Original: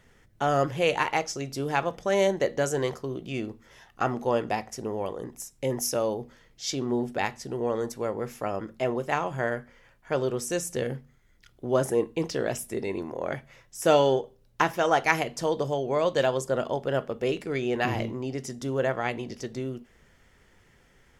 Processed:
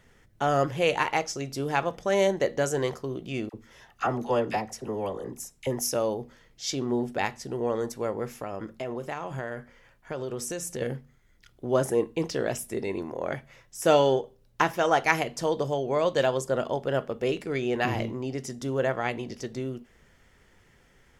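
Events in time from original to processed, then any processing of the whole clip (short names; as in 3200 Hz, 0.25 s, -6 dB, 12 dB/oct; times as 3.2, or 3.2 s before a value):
3.49–5.67 dispersion lows, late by 47 ms, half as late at 880 Hz
8.26–10.81 compressor, threshold -29 dBFS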